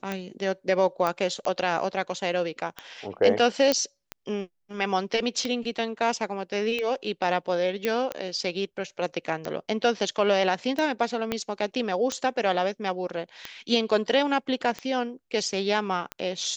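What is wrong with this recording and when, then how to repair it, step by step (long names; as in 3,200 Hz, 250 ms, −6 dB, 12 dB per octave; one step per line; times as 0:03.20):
scratch tick 45 rpm −16 dBFS
0:01.07: click −13 dBFS
0:03.72: click −8 dBFS
0:07.85: click −12 dBFS
0:11.32: click −12 dBFS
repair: click removal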